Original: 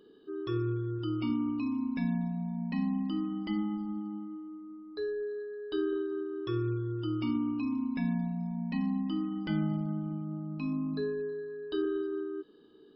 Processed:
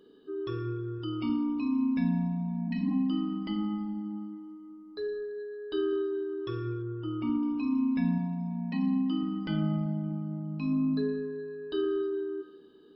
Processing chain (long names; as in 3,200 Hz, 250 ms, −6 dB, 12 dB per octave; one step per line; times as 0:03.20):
0:08.18–0:09.23: high-pass filter 150 Hz
coupled-rooms reverb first 0.79 s, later 3 s, DRR 6 dB
0:02.70–0:02.91: healed spectral selection 210–1,500 Hz both
0:06.82–0:07.43: low-pass filter 2,100 Hz 12 dB per octave